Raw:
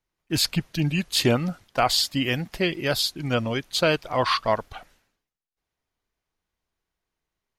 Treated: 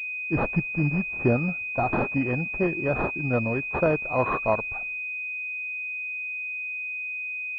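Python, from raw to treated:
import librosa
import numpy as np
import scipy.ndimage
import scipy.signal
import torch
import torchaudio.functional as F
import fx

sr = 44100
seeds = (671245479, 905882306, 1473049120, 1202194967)

y = fx.cvsd(x, sr, bps=16000, at=(0.74, 1.93))
y = fx.pwm(y, sr, carrier_hz=2500.0)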